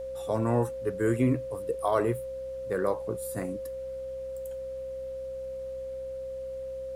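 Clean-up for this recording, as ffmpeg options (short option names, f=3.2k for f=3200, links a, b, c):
-af "bandreject=f=64.3:t=h:w=4,bandreject=f=128.6:t=h:w=4,bandreject=f=192.9:t=h:w=4,bandreject=f=257.2:t=h:w=4,bandreject=f=530:w=30,agate=range=-21dB:threshold=-29dB"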